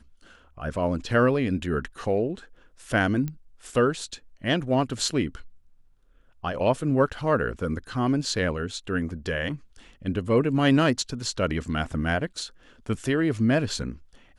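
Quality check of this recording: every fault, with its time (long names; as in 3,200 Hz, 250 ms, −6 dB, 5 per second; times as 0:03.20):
0:03.28: click −19 dBFS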